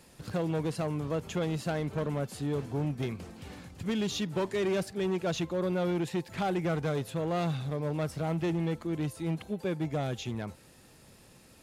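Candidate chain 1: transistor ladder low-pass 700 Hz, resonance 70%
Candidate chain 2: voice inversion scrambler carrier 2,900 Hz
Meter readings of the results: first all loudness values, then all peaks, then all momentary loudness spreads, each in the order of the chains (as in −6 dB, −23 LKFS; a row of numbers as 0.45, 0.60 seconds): −39.5, −29.0 LKFS; −24.5, −19.0 dBFS; 8, 6 LU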